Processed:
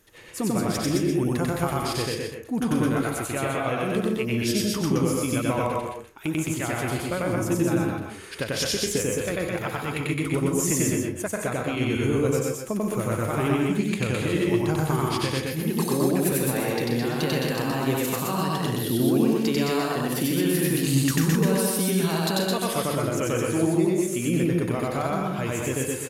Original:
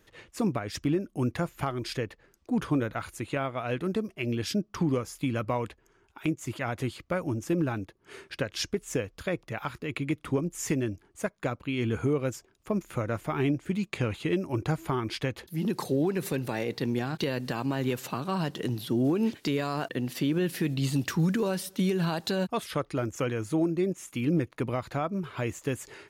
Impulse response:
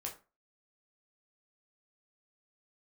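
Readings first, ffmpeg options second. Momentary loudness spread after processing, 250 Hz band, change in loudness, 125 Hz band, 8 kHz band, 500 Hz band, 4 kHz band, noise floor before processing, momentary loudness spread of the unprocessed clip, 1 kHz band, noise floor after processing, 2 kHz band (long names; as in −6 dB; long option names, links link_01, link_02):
6 LU, +5.5 dB, +5.5 dB, +5.0 dB, +12.5 dB, +5.5 dB, +7.5 dB, −66 dBFS, 7 LU, +6.0 dB, −36 dBFS, +6.0 dB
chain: -filter_complex "[0:a]equalizer=frequency=11000:width_type=o:width=1.2:gain=11,aecho=1:1:93.29|212.8:1|0.708,asplit=2[link_01][link_02];[1:a]atrim=start_sample=2205,adelay=131[link_03];[link_02][link_03]afir=irnorm=-1:irlink=0,volume=-2.5dB[link_04];[link_01][link_04]amix=inputs=2:normalize=0"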